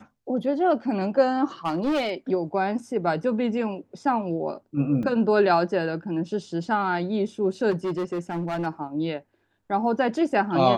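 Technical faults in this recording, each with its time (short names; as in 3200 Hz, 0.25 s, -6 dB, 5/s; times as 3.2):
1.65–2.11 clipped -20.5 dBFS
5.03 gap 3.8 ms
7.7–8.67 clipped -23.5 dBFS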